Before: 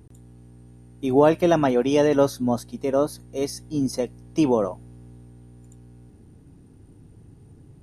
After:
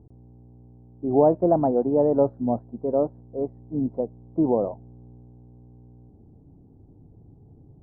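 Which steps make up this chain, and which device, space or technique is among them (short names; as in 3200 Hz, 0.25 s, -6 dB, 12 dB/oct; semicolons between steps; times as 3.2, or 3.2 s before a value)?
under water (LPF 810 Hz 24 dB/oct; bell 760 Hz +4.5 dB 0.57 oct); gain -2 dB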